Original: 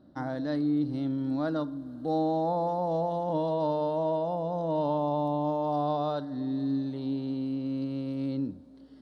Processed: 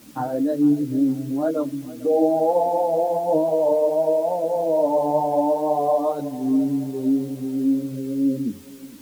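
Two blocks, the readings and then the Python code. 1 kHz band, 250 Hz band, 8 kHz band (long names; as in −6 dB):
+6.5 dB, +8.0 dB, can't be measured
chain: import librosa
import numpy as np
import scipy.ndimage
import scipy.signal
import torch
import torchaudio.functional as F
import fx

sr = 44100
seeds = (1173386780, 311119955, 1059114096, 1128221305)

p1 = fx.envelope_sharpen(x, sr, power=2.0)
p2 = scipy.signal.sosfilt(scipy.signal.butter(2, 120.0, 'highpass', fs=sr, output='sos'), p1)
p3 = fx.quant_dither(p2, sr, seeds[0], bits=8, dither='triangular')
p4 = p2 + F.gain(torch.from_numpy(p3), -8.0).numpy()
p5 = fx.wow_flutter(p4, sr, seeds[1], rate_hz=2.1, depth_cents=20.0)
p6 = p5 + fx.echo_feedback(p5, sr, ms=454, feedback_pct=46, wet_db=-18.5, dry=0)
p7 = fx.ensemble(p6, sr)
y = F.gain(torch.from_numpy(p7), 9.0).numpy()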